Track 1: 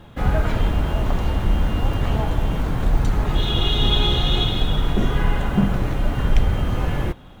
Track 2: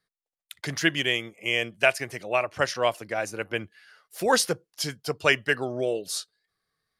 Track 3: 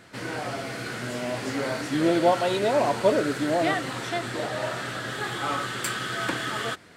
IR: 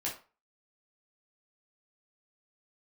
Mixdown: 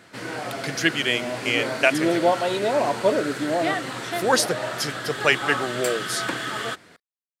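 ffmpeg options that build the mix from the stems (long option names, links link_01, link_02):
-filter_complex "[1:a]volume=2dB,asplit=3[link_01][link_02][link_03];[link_01]atrim=end=2.27,asetpts=PTS-STARTPTS,afade=type=out:start_time=2.266:duration=0.004:curve=hsin[link_04];[link_02]atrim=start=2.27:end=3.98,asetpts=PTS-STARTPTS,volume=0[link_05];[link_03]atrim=start=3.98,asetpts=PTS-STARTPTS,afade=type=in:duration=0.004:curve=hsin[link_06];[link_04][link_05][link_06]concat=n=3:v=0:a=1[link_07];[2:a]volume=1dB[link_08];[link_07][link_08]amix=inputs=2:normalize=0,highpass=frequency=130:poles=1"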